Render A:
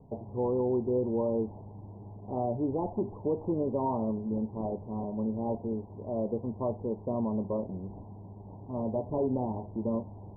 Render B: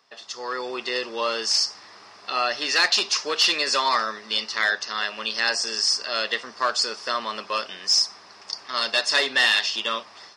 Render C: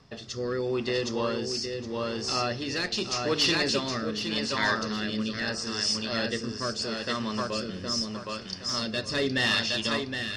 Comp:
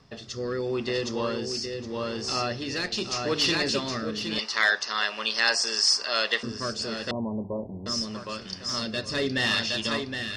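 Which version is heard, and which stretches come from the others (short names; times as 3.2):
C
4.39–6.43 from B
7.11–7.86 from A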